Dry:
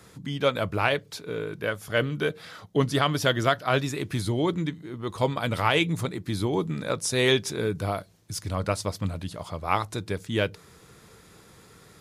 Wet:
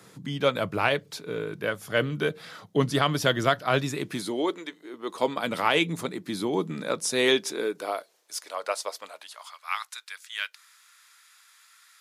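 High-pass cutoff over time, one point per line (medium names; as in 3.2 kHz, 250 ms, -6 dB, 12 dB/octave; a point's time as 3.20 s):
high-pass 24 dB/octave
3.94 s 120 Hz
4.63 s 410 Hz
5.49 s 180 Hz
7.14 s 180 Hz
8.33 s 510 Hz
9.05 s 510 Hz
9.58 s 1.3 kHz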